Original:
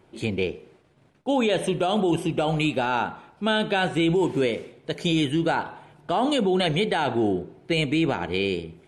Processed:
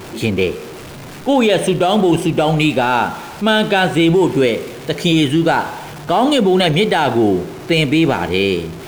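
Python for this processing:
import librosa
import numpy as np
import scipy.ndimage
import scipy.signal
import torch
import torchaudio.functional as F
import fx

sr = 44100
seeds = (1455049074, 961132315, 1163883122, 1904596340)

y = x + 0.5 * 10.0 ** (-36.0 / 20.0) * np.sign(x)
y = F.gain(torch.from_numpy(y), 8.5).numpy()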